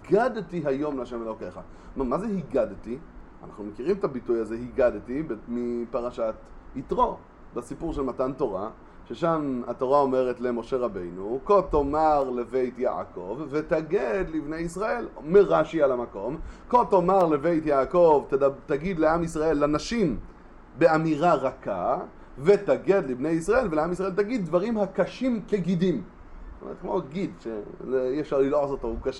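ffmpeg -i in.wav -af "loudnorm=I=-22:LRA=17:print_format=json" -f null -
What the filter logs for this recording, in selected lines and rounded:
"input_i" : "-25.8",
"input_tp" : "-8.1",
"input_lra" : "6.3",
"input_thresh" : "-36.3",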